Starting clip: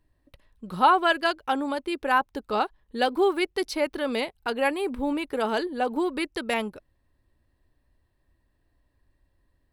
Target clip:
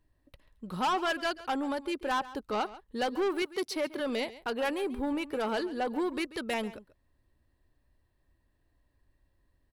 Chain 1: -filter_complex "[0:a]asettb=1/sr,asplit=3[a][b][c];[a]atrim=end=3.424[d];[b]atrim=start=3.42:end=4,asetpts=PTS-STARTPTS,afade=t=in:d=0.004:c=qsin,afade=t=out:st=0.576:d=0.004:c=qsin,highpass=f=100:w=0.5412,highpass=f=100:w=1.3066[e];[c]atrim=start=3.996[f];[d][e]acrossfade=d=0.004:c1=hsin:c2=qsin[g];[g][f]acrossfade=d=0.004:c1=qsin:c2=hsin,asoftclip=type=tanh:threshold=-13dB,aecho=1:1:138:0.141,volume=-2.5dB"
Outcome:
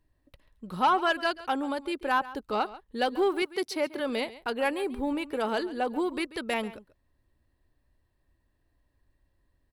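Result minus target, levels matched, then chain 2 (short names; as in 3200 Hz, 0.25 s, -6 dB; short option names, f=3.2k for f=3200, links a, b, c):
soft clip: distortion -10 dB
-filter_complex "[0:a]asettb=1/sr,asplit=3[a][b][c];[a]atrim=end=3.424[d];[b]atrim=start=3.42:end=4,asetpts=PTS-STARTPTS,afade=t=in:d=0.004:c=qsin,afade=t=out:st=0.576:d=0.004:c=qsin,highpass=f=100:w=0.5412,highpass=f=100:w=1.3066[e];[c]atrim=start=3.996[f];[d][e]acrossfade=d=0.004:c1=hsin:c2=qsin[g];[g][f]acrossfade=d=0.004:c1=qsin:c2=hsin,asoftclip=type=tanh:threshold=-22.5dB,aecho=1:1:138:0.141,volume=-2.5dB"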